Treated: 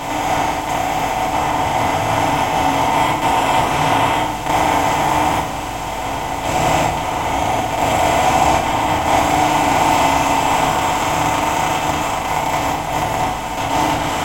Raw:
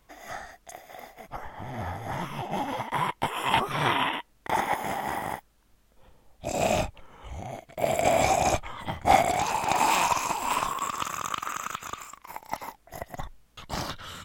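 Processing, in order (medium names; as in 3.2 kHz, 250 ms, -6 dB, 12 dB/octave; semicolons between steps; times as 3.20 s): spectral levelling over time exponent 0.2; FDN reverb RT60 0.64 s, low-frequency decay 1.3×, high-frequency decay 0.75×, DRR -6 dB; trim -7 dB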